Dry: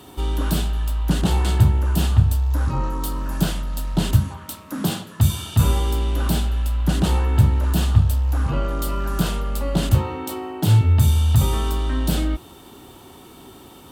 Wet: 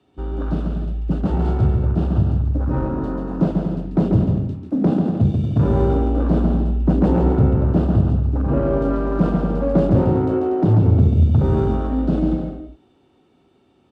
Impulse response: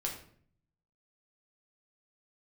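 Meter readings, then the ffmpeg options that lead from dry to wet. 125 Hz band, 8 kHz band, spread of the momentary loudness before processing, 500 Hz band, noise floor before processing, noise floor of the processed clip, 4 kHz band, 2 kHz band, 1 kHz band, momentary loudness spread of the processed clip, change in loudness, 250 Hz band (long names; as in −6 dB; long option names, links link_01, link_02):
+1.0 dB, below −25 dB, 9 LU, +9.0 dB, −44 dBFS, −58 dBFS, below −15 dB, −6.0 dB, +0.5 dB, 8 LU, +2.0 dB, +7.5 dB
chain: -filter_complex "[0:a]afwtdn=0.0355,acrossover=split=170|650|6800[link_01][link_02][link_03][link_04];[link_02]dynaudnorm=framelen=370:gausssize=13:maxgain=11dB[link_05];[link_03]equalizer=frequency=1000:width_type=o:width=0.33:gain=-11,equalizer=frequency=3150:width_type=o:width=0.33:gain=-3,equalizer=frequency=5000:width_type=o:width=0.33:gain=3[link_06];[link_04]aeval=exprs='(mod(316*val(0)+1,2)-1)/316':channel_layout=same[link_07];[link_01][link_05][link_06][link_07]amix=inputs=4:normalize=0,highpass=frequency=79:poles=1,highshelf=frequency=6700:gain=-9,asoftclip=type=tanh:threshold=-10dB,aexciter=amount=1.5:drive=7.8:freq=2500,bandreject=frequency=3200:width=26,aecho=1:1:140|238|306.6|354.6|388.2:0.631|0.398|0.251|0.158|0.1,adynamicsmooth=sensitivity=2:basefreq=2600,volume=1dB"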